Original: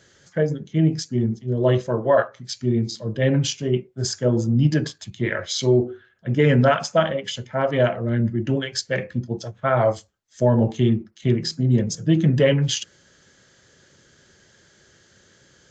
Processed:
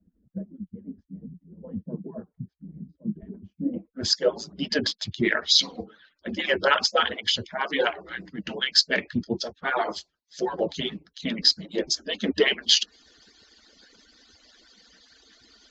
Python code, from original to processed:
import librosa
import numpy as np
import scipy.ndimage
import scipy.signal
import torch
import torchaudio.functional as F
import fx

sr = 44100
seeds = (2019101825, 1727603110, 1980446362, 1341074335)

y = fx.hpss_only(x, sr, part='percussive')
y = fx.filter_sweep_lowpass(y, sr, from_hz=170.0, to_hz=4500.0, start_s=3.58, end_s=4.11, q=3.2)
y = F.gain(torch.from_numpy(y), 2.0).numpy()